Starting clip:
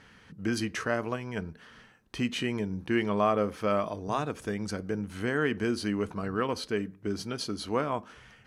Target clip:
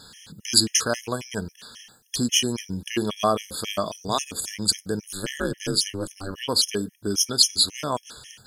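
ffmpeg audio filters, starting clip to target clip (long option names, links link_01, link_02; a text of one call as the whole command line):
ffmpeg -i in.wav -filter_complex "[0:a]aexciter=amount=9.7:drive=2.7:freq=3200,asplit=3[link_01][link_02][link_03];[link_01]afade=type=out:start_time=5.09:duration=0.02[link_04];[link_02]aeval=exprs='val(0)*sin(2*PI*100*n/s)':channel_layout=same,afade=type=in:start_time=5.09:duration=0.02,afade=type=out:start_time=6.34:duration=0.02[link_05];[link_03]afade=type=in:start_time=6.34:duration=0.02[link_06];[link_04][link_05][link_06]amix=inputs=3:normalize=0,afftfilt=real='re*gt(sin(2*PI*3.7*pts/sr)*(1-2*mod(floor(b*sr/1024/1700),2)),0)':imag='im*gt(sin(2*PI*3.7*pts/sr)*(1-2*mod(floor(b*sr/1024/1700),2)),0)':win_size=1024:overlap=0.75,volume=5dB" out.wav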